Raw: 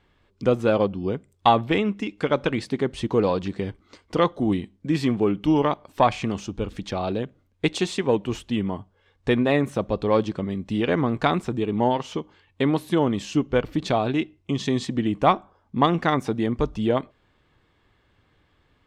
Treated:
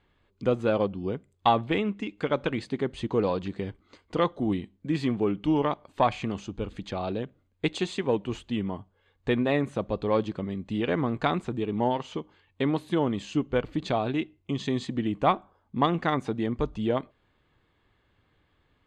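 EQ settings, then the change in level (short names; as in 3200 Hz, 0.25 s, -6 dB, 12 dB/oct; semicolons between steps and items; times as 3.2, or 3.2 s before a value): LPF 7400 Hz 12 dB/oct; notch 5500 Hz, Q 5.1; -4.5 dB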